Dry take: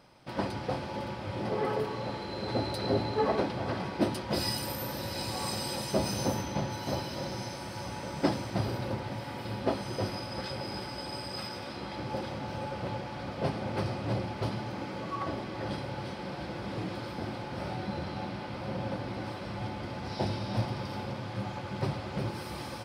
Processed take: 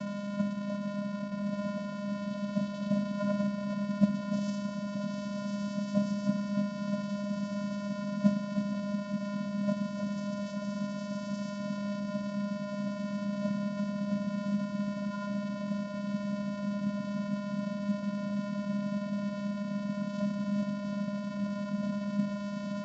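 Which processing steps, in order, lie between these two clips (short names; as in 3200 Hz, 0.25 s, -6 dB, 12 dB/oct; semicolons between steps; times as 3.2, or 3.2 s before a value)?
delta modulation 64 kbps, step -27 dBFS; in parallel at -8 dB: sample-and-hold 16×; on the sum: diffused feedback echo 1.751 s, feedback 67%, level -10 dB; vocoder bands 8, square 203 Hz; on a send: multi-head echo 0.154 s, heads first and third, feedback 72%, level -19 dB; on the sum: gain -3 dB; µ-law 128 kbps 16000 Hz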